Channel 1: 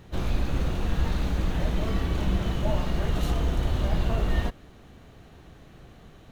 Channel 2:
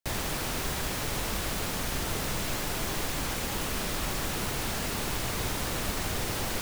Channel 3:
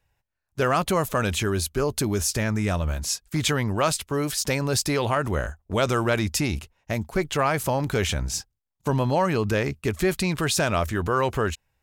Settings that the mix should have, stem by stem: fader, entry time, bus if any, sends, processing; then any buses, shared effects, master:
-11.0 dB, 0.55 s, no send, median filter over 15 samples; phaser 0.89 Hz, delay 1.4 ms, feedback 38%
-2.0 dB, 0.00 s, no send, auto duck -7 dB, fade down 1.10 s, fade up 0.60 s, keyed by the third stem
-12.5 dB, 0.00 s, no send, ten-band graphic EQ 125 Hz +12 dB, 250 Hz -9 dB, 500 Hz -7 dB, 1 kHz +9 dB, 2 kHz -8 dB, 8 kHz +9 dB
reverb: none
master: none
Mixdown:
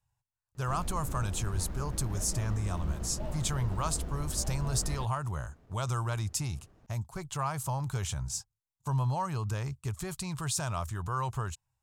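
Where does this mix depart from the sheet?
stem 1: missing phaser 0.89 Hz, delay 1.4 ms, feedback 38%; stem 2: muted

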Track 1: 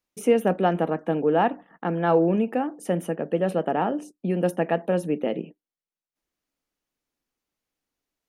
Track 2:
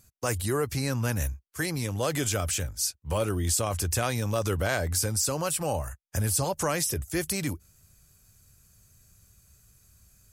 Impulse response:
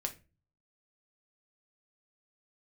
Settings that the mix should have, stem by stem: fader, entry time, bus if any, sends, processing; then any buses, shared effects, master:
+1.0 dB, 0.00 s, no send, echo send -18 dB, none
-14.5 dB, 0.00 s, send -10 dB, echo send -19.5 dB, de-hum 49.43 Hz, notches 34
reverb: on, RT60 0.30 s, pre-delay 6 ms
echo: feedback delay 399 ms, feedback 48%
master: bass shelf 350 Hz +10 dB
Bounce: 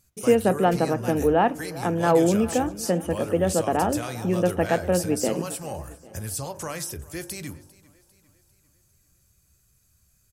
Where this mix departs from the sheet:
stem 2 -14.5 dB -> -7.0 dB; master: missing bass shelf 350 Hz +10 dB

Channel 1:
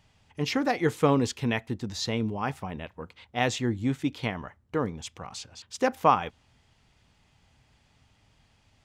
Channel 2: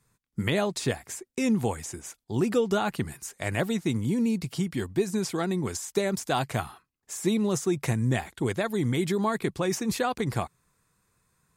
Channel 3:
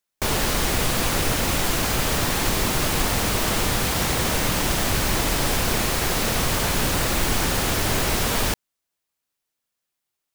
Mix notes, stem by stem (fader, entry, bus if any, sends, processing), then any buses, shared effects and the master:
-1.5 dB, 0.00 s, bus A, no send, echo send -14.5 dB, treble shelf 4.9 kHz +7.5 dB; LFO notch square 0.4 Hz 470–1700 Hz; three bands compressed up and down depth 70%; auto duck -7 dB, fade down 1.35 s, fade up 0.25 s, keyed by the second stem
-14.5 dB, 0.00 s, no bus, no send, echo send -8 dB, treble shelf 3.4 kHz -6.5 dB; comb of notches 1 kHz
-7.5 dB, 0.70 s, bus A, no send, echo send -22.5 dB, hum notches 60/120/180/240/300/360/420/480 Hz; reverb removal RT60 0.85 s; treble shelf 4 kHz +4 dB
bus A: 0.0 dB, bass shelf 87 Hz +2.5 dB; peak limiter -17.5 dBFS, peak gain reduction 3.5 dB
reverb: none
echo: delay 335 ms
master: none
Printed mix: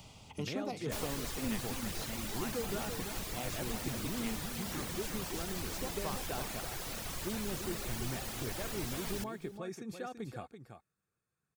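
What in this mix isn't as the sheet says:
stem 1 -1.5 dB -> -9.5 dB; stem 3 -7.5 dB -> -18.0 dB

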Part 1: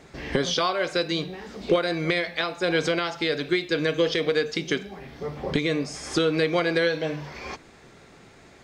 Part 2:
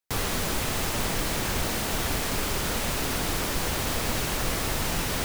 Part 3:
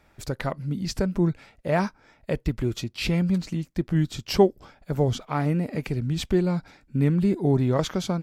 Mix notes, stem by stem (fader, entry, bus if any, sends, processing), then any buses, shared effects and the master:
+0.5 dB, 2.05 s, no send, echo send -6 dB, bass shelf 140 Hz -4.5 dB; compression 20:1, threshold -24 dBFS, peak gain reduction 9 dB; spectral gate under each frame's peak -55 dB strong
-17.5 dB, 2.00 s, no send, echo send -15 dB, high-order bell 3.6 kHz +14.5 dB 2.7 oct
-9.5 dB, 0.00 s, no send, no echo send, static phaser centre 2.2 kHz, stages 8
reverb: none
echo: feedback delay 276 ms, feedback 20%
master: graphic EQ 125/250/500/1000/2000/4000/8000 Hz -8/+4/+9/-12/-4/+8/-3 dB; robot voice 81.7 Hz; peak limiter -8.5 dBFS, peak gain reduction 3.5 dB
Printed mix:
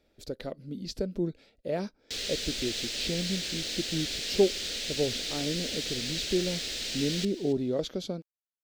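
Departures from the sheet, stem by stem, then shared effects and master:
stem 1: muted; stem 3: missing static phaser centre 2.2 kHz, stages 8; master: missing robot voice 81.7 Hz

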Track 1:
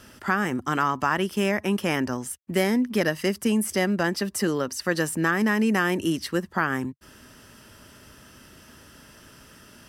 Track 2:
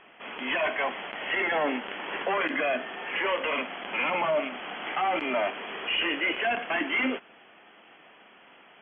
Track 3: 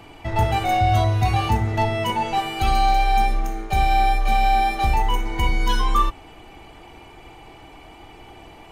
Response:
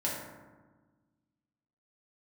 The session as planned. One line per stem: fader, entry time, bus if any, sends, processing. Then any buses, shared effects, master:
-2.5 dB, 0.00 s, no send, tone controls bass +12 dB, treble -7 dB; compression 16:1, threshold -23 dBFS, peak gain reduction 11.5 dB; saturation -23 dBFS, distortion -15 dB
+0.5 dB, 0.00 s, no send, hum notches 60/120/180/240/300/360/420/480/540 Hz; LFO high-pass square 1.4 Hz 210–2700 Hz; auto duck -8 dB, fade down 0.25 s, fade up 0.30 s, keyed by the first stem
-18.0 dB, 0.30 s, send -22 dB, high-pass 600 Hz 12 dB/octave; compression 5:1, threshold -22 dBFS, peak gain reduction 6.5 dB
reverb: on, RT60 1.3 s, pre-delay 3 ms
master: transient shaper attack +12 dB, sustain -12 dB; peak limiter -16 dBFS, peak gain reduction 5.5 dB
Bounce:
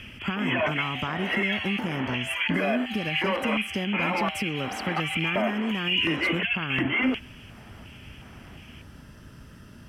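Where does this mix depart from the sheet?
stem 1: missing saturation -23 dBFS, distortion -15 dB; stem 2 +0.5 dB -> +9.0 dB; master: missing transient shaper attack +12 dB, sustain -12 dB

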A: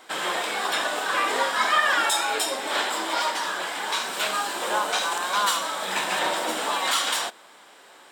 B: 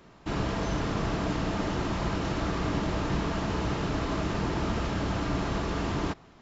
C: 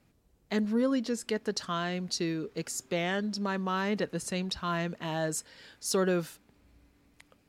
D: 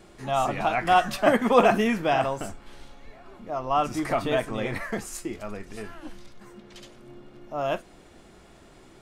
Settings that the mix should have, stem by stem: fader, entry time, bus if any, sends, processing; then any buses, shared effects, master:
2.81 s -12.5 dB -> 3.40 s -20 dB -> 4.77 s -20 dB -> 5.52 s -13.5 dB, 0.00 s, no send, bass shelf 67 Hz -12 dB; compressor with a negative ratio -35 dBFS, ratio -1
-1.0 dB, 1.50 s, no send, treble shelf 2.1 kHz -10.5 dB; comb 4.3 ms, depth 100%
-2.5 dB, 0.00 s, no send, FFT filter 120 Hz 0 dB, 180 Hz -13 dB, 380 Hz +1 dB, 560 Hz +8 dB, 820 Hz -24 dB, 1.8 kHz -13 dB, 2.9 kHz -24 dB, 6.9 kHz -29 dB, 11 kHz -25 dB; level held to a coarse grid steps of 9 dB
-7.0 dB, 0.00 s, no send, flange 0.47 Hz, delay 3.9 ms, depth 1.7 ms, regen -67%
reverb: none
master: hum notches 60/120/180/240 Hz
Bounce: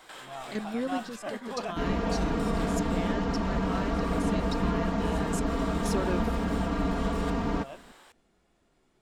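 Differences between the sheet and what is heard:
stem C: missing FFT filter 120 Hz 0 dB, 180 Hz -13 dB, 380 Hz +1 dB, 560 Hz +8 dB, 820 Hz -24 dB, 1.8 kHz -13 dB, 2.9 kHz -24 dB, 6.9 kHz -29 dB, 11 kHz -25 dB; stem D -7.0 dB -> -13.0 dB; master: missing hum notches 60/120/180/240 Hz

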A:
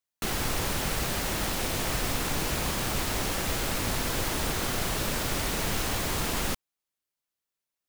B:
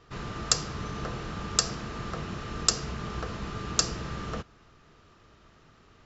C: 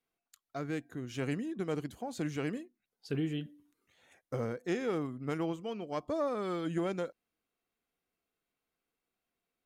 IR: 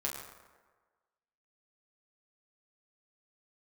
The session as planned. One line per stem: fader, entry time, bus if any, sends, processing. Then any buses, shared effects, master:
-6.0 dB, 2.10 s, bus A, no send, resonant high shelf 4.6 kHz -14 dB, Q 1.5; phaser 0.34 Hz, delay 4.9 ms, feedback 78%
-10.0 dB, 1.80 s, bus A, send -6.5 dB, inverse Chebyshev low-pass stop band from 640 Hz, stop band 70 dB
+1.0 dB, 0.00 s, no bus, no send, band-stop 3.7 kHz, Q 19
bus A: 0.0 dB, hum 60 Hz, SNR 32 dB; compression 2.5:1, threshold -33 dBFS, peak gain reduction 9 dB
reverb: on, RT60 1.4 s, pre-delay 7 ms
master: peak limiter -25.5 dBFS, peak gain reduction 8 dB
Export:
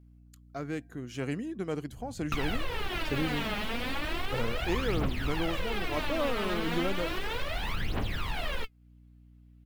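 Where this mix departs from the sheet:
stem A -6.0 dB -> +1.0 dB; master: missing peak limiter -25.5 dBFS, peak gain reduction 8 dB

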